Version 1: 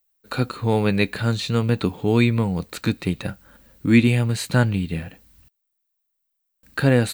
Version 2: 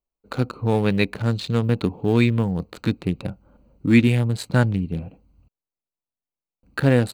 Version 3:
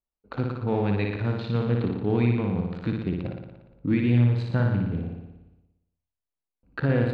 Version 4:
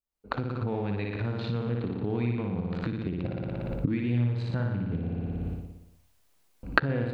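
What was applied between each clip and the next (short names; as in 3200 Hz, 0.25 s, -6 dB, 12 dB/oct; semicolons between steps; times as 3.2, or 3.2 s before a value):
Wiener smoothing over 25 samples
limiter -10.5 dBFS, peak gain reduction 7 dB; air absorption 270 m; flutter echo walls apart 10 m, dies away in 1 s; gain -4.5 dB
recorder AGC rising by 57 dB/s; gain -6.5 dB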